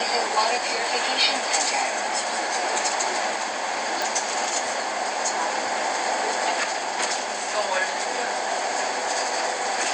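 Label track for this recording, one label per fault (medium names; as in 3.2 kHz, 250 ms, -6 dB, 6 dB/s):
4.020000	4.020000	pop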